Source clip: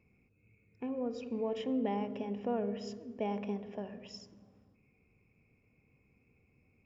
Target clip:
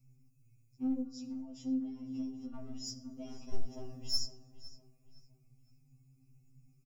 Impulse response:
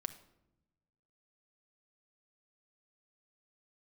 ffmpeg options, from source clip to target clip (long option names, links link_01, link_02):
-filter_complex "[0:a]asettb=1/sr,asplit=3[link_01][link_02][link_03];[link_01]atrim=end=1.014[link_04];[link_02]atrim=start=1.01:end=2.54,asetpts=PTS-STARTPTS,afade=type=in:duration=0.004:curve=qsin,afade=type=out:start_time=1.526:duration=0.004:curve=qsin,acompressor=threshold=-36dB:ratio=16[link_05];[link_03]atrim=start=2.536[link_06];[link_04][link_05]acrossfade=duration=0.004:curve1=hsin:curve2=qsin[link_07];[link_07][link_06]acrossfade=duration=0.004:curve1=qsin:curve2=hsin,firequalizer=gain_entry='entry(260,0);entry(440,-19);entry(1200,-12);entry(1700,-25);entry(5400,8)':delay=0.05:min_phase=1,asettb=1/sr,asplit=3[link_08][link_09][link_10];[link_08]atrim=end=3.534[link_11];[link_09]atrim=start=3.53:end=4.26,asetpts=PTS-STARTPTS,afade=type=in:duration=0.004:curve=qsin,afade=type=out:start_time=0.726:duration=0.004:curve=qsin,acontrast=36[link_12];[link_10]atrim=start=4.256[link_13];[link_11][link_12]acrossfade=duration=0.004:curve1=hsin:curve2=qsin[link_14];[link_14][link_13]acrossfade=duration=0.004:curve1=qsin:curve2=hsin,aeval=exprs='clip(val(0),-1,0.0178)':channel_layout=same,lowshelf=frequency=64:gain=10,aecho=1:1:6.3:0.45,asplit=2[link_15][link_16];[link_16]adelay=511,lowpass=frequency=3500:poles=1,volume=-15dB,asplit=2[link_17][link_18];[link_18]adelay=511,lowpass=frequency=3500:poles=1,volume=0.38,asplit=2[link_19][link_20];[link_20]adelay=511,lowpass=frequency=3500:poles=1,volume=0.38[link_21];[link_15][link_17][link_19][link_21]amix=inputs=4:normalize=0[link_22];[1:a]atrim=start_sample=2205,afade=type=out:start_time=0.17:duration=0.01,atrim=end_sample=7938[link_23];[link_22][link_23]afir=irnorm=-1:irlink=0,afftfilt=real='re*2.45*eq(mod(b,6),0)':imag='im*2.45*eq(mod(b,6),0)':win_size=2048:overlap=0.75,volume=6dB"